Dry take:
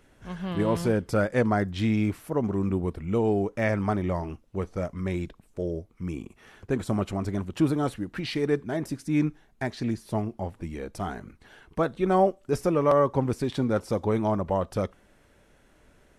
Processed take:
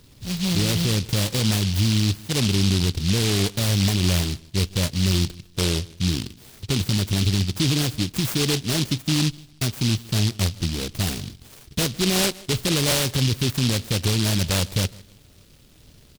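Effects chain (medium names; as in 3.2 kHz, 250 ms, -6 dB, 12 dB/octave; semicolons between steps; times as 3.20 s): peaking EQ 110 Hz +10.5 dB 1.4 oct; peak limiter -17.5 dBFS, peak gain reduction 11 dB; on a send: feedback delay 155 ms, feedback 24%, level -22 dB; on the sum: delay time shaken by noise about 3.8 kHz, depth 0.34 ms; trim +4.5 dB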